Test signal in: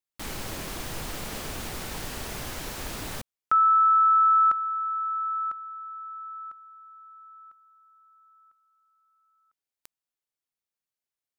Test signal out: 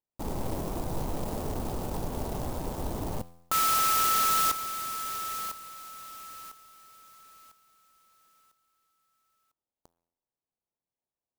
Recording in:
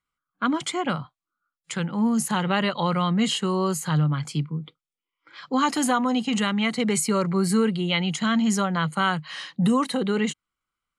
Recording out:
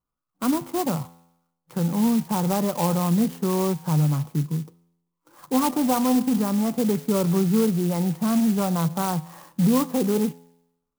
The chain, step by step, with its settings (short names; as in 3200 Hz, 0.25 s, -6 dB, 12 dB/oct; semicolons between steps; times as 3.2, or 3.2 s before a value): EQ curve 910 Hz 0 dB, 1900 Hz -20 dB, 3800 Hz -25 dB; in parallel at -1 dB: limiter -25.5 dBFS; on the sum: resonator 85 Hz, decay 0.84 s, harmonics all, mix 50%; clock jitter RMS 0.084 ms; gain +4.5 dB